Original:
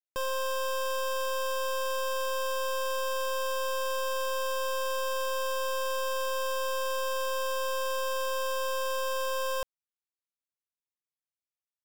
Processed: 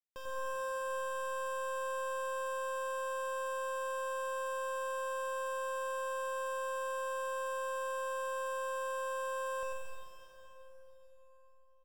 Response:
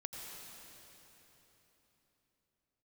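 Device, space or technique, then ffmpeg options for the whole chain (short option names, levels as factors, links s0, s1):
swimming-pool hall: -filter_complex "[0:a]bandreject=f=52.89:t=h:w=4,bandreject=f=105.78:t=h:w=4,bandreject=f=158.67:t=h:w=4,bandreject=f=211.56:t=h:w=4,bandreject=f=264.45:t=h:w=4,bandreject=f=317.34:t=h:w=4,bandreject=f=370.23:t=h:w=4,bandreject=f=423.12:t=h:w=4,bandreject=f=476.01:t=h:w=4,bandreject=f=528.9:t=h:w=4,bandreject=f=581.79:t=h:w=4,bandreject=f=634.68:t=h:w=4,bandreject=f=687.57:t=h:w=4,bandreject=f=740.46:t=h:w=4,bandreject=f=793.35:t=h:w=4,bandreject=f=846.24:t=h:w=4,bandreject=f=899.13:t=h:w=4,bandreject=f=952.02:t=h:w=4,bandreject=f=1004.91:t=h:w=4,bandreject=f=1057.8:t=h:w=4,bandreject=f=1110.69:t=h:w=4,bandreject=f=1163.58:t=h:w=4,bandreject=f=1216.47:t=h:w=4,bandreject=f=1269.36:t=h:w=4,bandreject=f=1322.25:t=h:w=4,bandreject=f=1375.14:t=h:w=4[s0];[1:a]atrim=start_sample=2205[s1];[s0][s1]afir=irnorm=-1:irlink=0,highshelf=f=4900:g=-8,aecho=1:1:95:0.596,volume=0.447"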